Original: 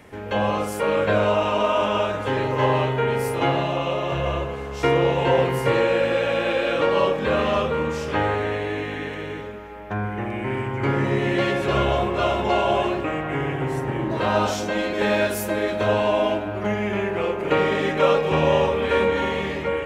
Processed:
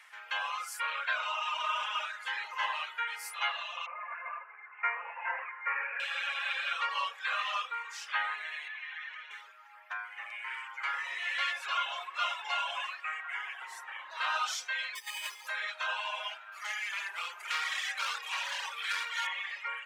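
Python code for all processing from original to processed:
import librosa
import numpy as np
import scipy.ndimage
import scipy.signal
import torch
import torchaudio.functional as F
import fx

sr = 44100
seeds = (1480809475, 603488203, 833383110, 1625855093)

y = fx.chain(x, sr, fx.steep_lowpass(hz=2400.0, slope=72),
    fx.low_shelf(hz=130.0, db=-12.0), at=(3.86, 6.0))
y = fx.chain(y, sr, fx.highpass(hz=500.0, slope=12),
    fx.air_absorb(metres=140.0), at=(8.68, 9.31))
y = fx.chain(y, sr, fx.fixed_phaser(hz=1000.0, stages=8),
    fx.over_compress(threshold_db=-27.0, ratio=-0.5),
    fx.resample_bad(factor=8, down='filtered', up='hold'), at=(14.95, 15.47))
y = fx.chain(y, sr, fx.highpass(hz=150.0, slope=24),
    fx.bass_treble(bass_db=-7, treble_db=12),
    fx.clip_hard(threshold_db=-21.5), at=(16.52, 19.27))
y = scipy.signal.sosfilt(scipy.signal.cheby2(4, 70, 260.0, 'highpass', fs=sr, output='sos'), y)
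y = fx.dereverb_blind(y, sr, rt60_s=1.6)
y = fx.high_shelf(y, sr, hz=12000.0, db=-10.0)
y = y * 10.0 ** (-1.5 / 20.0)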